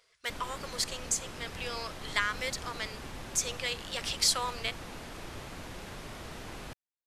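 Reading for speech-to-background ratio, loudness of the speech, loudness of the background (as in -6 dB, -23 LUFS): 11.0 dB, -33.0 LUFS, -44.0 LUFS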